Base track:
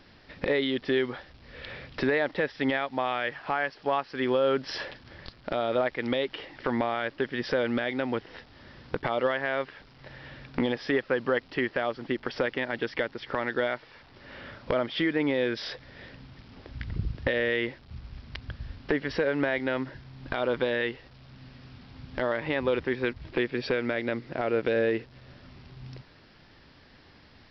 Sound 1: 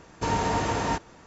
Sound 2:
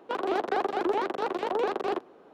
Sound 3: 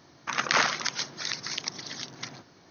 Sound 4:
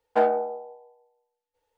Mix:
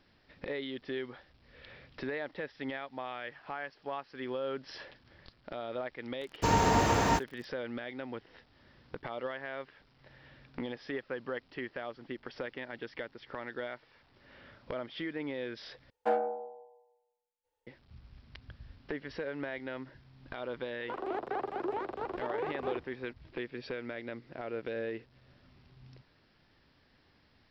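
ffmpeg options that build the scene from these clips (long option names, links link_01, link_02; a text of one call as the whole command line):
ffmpeg -i bed.wav -i cue0.wav -i cue1.wav -i cue2.wav -i cue3.wav -filter_complex "[0:a]volume=-11.5dB[link_01];[1:a]aeval=exprs='val(0)*gte(abs(val(0)),0.00794)':channel_layout=same[link_02];[2:a]acrossover=split=2800[link_03][link_04];[link_04]acompressor=threshold=-60dB:ratio=4:attack=1:release=60[link_05];[link_03][link_05]amix=inputs=2:normalize=0[link_06];[link_01]asplit=2[link_07][link_08];[link_07]atrim=end=15.904[link_09];[4:a]atrim=end=1.77,asetpts=PTS-STARTPTS,volume=-8.5dB[link_10];[link_08]atrim=start=17.666[link_11];[link_02]atrim=end=1.26,asetpts=PTS-STARTPTS,afade=type=in:duration=0.004:curve=hsin,afade=type=out:start_time=1.256:duration=0.004:curve=hsin,adelay=6210[link_12];[link_06]atrim=end=2.33,asetpts=PTS-STARTPTS,volume=-8dB,afade=type=in:duration=0.004:curve=hsin,afade=type=out:start_time=2.326:duration=0.004:curve=hsin,adelay=20790[link_13];[link_09][link_10]acrossfade=duration=0.004:curve1=hsin:curve2=hsin[link_14];[link_14][link_11]acrossfade=duration=0.004:curve1=hsin:curve2=hsin[link_15];[link_15][link_12][link_13]amix=inputs=3:normalize=0" out.wav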